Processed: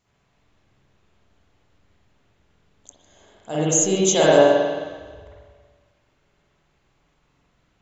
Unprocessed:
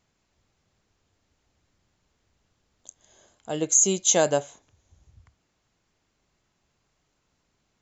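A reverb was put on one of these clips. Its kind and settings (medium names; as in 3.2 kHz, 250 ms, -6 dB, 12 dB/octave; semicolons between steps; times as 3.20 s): spring tank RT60 1.6 s, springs 45/52 ms, chirp 40 ms, DRR -8.5 dB; trim -1 dB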